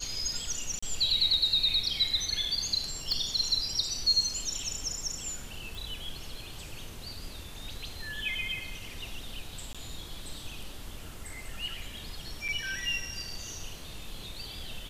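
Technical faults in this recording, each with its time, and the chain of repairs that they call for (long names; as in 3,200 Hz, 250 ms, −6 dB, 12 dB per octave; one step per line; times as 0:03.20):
0:00.79–0:00.82: drop-out 35 ms
0:03.12: click −18 dBFS
0:05.75: click
0:09.73–0:09.75: drop-out 16 ms
0:12.48–0:12.49: drop-out 6.4 ms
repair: click removal
repair the gap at 0:00.79, 35 ms
repair the gap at 0:09.73, 16 ms
repair the gap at 0:12.48, 6.4 ms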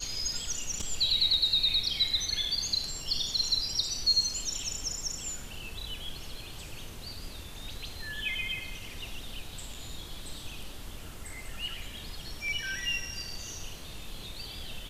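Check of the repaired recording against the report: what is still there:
none of them is left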